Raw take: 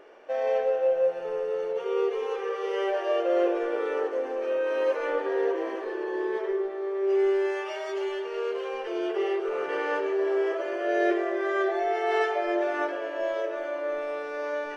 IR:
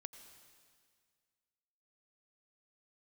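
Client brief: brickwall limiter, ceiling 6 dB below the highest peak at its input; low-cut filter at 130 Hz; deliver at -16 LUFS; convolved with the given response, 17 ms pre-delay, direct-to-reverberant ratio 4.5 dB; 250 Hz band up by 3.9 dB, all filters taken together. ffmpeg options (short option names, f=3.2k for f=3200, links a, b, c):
-filter_complex "[0:a]highpass=130,equalizer=f=250:t=o:g=8,alimiter=limit=-18dB:level=0:latency=1,asplit=2[a][b];[1:a]atrim=start_sample=2205,adelay=17[c];[b][c]afir=irnorm=-1:irlink=0,volume=0.5dB[d];[a][d]amix=inputs=2:normalize=0,volume=9.5dB"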